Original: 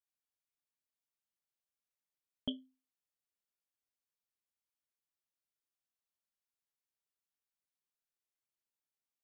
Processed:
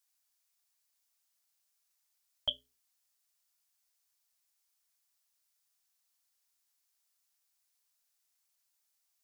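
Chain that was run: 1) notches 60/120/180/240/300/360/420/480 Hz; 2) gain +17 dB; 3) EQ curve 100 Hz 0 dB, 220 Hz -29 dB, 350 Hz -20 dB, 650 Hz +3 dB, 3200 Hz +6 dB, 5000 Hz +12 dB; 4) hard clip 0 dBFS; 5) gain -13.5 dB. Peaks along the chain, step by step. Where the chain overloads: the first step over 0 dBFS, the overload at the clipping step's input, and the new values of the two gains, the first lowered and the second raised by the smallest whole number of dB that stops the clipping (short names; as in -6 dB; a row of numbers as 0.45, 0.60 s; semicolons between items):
-24.5, -7.5, -4.5, -4.5, -18.0 dBFS; no overload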